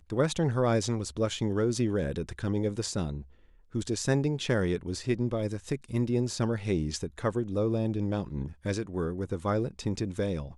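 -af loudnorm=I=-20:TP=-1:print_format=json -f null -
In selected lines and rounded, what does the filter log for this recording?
"input_i" : "-30.7",
"input_tp" : "-12.0",
"input_lra" : "2.7",
"input_thresh" : "-40.8",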